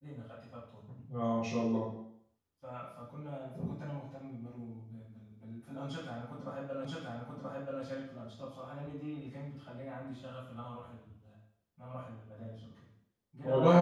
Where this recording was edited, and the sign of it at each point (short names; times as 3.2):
6.85 repeat of the last 0.98 s